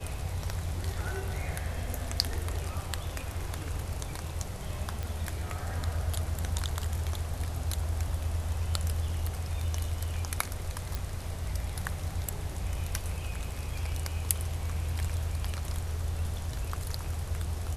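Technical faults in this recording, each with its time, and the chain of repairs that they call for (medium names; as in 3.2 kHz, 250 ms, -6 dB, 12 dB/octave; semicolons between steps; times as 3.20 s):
5.03 s: pop -21 dBFS
10.95 s: pop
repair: de-click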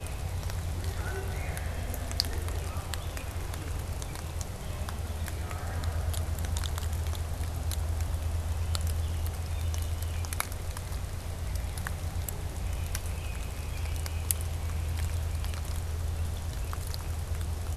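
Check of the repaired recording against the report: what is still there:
10.95 s: pop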